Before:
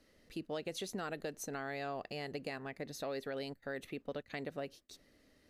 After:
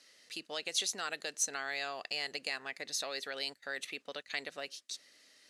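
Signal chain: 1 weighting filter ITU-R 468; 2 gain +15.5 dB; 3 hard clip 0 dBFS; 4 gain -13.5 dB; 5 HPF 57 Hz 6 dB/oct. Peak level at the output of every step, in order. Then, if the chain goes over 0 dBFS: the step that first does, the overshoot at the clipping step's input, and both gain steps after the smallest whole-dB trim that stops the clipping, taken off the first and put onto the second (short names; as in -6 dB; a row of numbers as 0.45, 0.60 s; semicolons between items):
-21.0, -5.5, -5.5, -19.0, -19.0 dBFS; no overload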